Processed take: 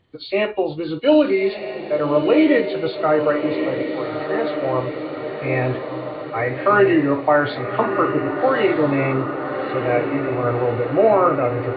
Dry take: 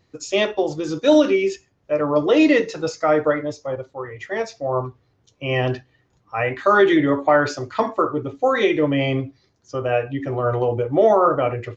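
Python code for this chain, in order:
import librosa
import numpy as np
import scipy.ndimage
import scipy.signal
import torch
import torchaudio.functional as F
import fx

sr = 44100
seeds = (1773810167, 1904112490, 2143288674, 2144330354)

y = fx.freq_compress(x, sr, knee_hz=1800.0, ratio=1.5)
y = fx.echo_diffused(y, sr, ms=1221, feedback_pct=64, wet_db=-7.0)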